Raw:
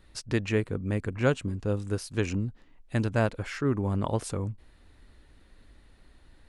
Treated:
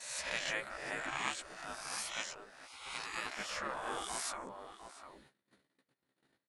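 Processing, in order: reverse spectral sustain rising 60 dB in 1.00 s; 1.17–3.26 s: bass shelf 380 Hz -11 dB; echo from a far wall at 120 m, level -9 dB; gate -47 dBFS, range -29 dB; spectral gate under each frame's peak -15 dB weak; bass shelf 87 Hz -10 dB; band-stop 2.7 kHz, Q 27; doubling 15 ms -5.5 dB; trim -2.5 dB

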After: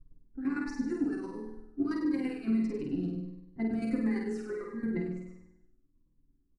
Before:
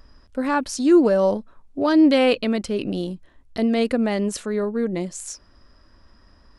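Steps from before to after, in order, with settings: gate -46 dBFS, range -12 dB; level-controlled noise filter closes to 370 Hz, open at -17 dBFS; peaking EQ 250 Hz +2.5 dB 0.76 oct; comb 7.4 ms, depth 84%; compression 6:1, threshold -19 dBFS, peak gain reduction 11.5 dB; static phaser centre 1.4 kHz, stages 4; square tremolo 8.9 Hz, depth 65%, duty 25%; flutter echo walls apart 8.5 m, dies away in 0.88 s; on a send at -2 dB: reverberation, pre-delay 3 ms; on the sum: Shepard-style phaser falling 1.5 Hz; trim -6 dB

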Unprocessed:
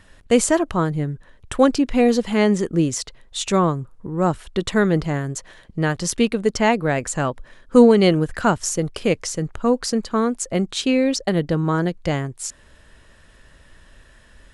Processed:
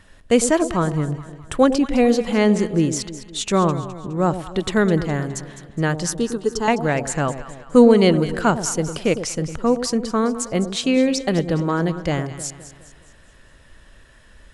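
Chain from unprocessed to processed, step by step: 6.09–6.68 s: static phaser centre 610 Hz, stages 6; on a send: echo whose repeats swap between lows and highs 104 ms, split 810 Hz, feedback 67%, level -10 dB

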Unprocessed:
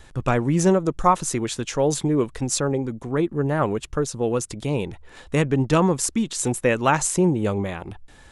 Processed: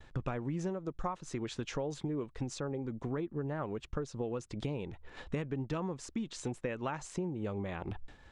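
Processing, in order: compression 10:1, threshold -33 dBFS, peak gain reduction 21.5 dB; expander -40 dBFS; distance through air 120 m

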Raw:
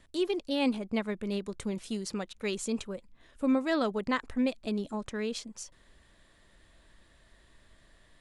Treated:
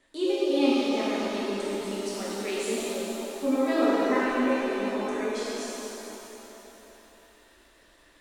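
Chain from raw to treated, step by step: spectral selection erased 3.76–5.35 s, 2.6–5.6 kHz; resonant low shelf 210 Hz -11 dB, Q 1.5; pitch-shifted reverb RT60 3.3 s, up +7 st, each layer -8 dB, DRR -9 dB; trim -5 dB

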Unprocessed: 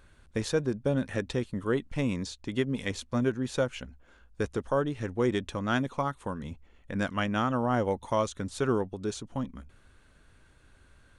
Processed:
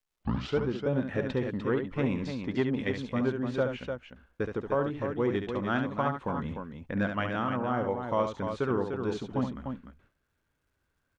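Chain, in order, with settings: tape start-up on the opening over 0.60 s; low-pass 2.7 kHz 12 dB/octave; bass shelf 66 Hz -9.5 dB; gate with hold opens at -50 dBFS; gain riding within 4 dB 0.5 s; crackle 370 per s -72 dBFS; multi-tap echo 70/299 ms -7.5/-7 dB; transformer saturation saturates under 260 Hz

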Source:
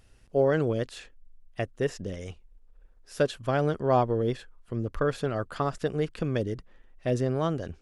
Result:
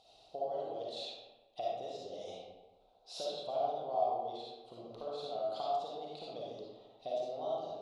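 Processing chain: compression 10:1, threshold -40 dBFS, peak gain reduction 22 dB; two resonant band-passes 1.7 kHz, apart 2.4 oct; reverberation RT60 1.2 s, pre-delay 15 ms, DRR -6 dB; trim +11.5 dB

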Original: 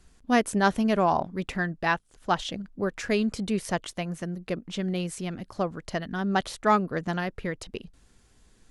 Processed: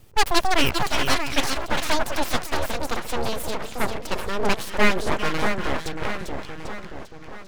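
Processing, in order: gliding tape speed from 179% -> 54%; two-band feedback delay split 1.2 kHz, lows 630 ms, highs 397 ms, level -5 dB; full-wave rectifier; trim +6 dB

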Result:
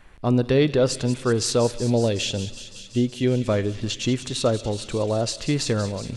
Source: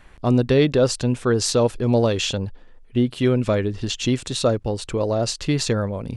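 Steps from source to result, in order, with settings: 1.76–3.48 s: peaking EQ 1.2 kHz -13.5 dB 0.56 oct; feedback echo behind a high-pass 186 ms, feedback 82%, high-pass 2.8 kHz, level -11 dB; on a send at -18 dB: reverberation RT60 1.7 s, pre-delay 4 ms; on the sum: trim -2 dB

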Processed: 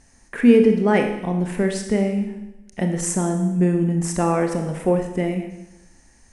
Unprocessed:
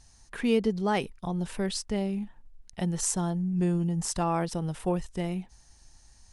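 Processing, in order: graphic EQ 250/500/2000/4000/8000 Hz +11/+8/+11/-7/+4 dB; on a send: reverberation RT60 0.95 s, pre-delay 26 ms, DRR 4.5 dB

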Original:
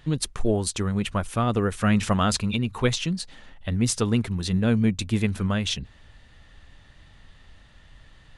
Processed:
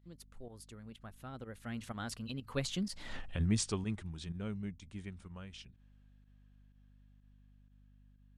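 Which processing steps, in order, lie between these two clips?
Doppler pass-by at 3.16 s, 33 m/s, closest 2.4 m; hum 50 Hz, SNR 21 dB; volume shaper 125 bpm, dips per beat 1, -12 dB, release 66 ms; trim +5.5 dB

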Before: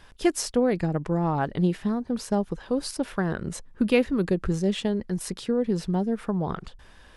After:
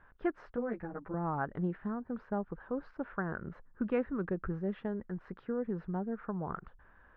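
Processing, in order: four-pole ladder low-pass 1.7 kHz, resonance 50%; 0.56–1.14 s: three-phase chorus; trim -1.5 dB

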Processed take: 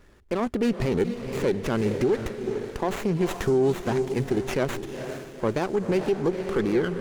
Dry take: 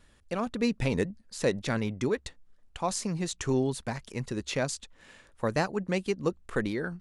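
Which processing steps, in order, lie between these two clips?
peaking EQ 380 Hz +10 dB 0.38 oct; echo that smears into a reverb 464 ms, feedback 42%, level -11.5 dB; peak limiter -20.5 dBFS, peak gain reduction 9 dB; sliding maximum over 9 samples; trim +6 dB

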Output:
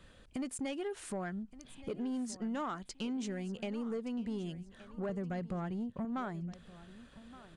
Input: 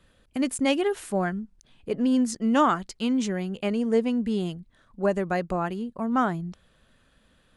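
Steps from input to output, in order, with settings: 5.09–6.05 s: peaking EQ 110 Hz +14 dB 2 oct; compression 4:1, threshold -39 dBFS, peak gain reduction 18.5 dB; saturation -33 dBFS, distortion -18 dB; on a send: feedback delay 1171 ms, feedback 29%, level -17 dB; on the sum: resampled via 22.05 kHz; trim +2.5 dB

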